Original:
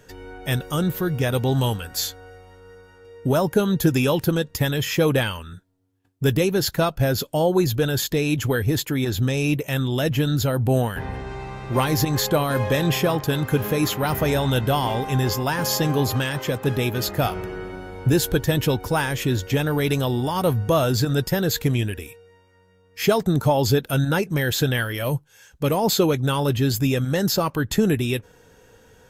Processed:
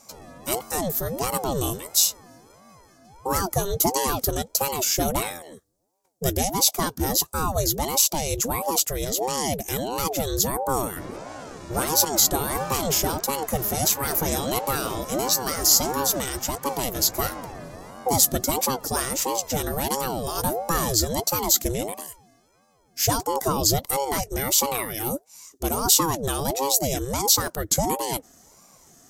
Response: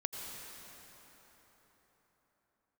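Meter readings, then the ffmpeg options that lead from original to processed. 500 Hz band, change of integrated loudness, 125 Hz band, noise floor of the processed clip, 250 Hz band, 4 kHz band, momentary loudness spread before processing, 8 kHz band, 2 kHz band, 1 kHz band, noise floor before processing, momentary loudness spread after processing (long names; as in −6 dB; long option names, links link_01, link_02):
−5.0 dB, −1.0 dB, −10.5 dB, −60 dBFS, −7.5 dB, +1.0 dB, 7 LU, +10.0 dB, −7.0 dB, +1.5 dB, −55 dBFS, 10 LU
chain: -af "highshelf=frequency=4200:width_type=q:width=1.5:gain=13,aeval=exprs='val(0)*sin(2*PI*450*n/s+450*0.55/1.5*sin(2*PI*1.5*n/s))':channel_layout=same,volume=-2.5dB"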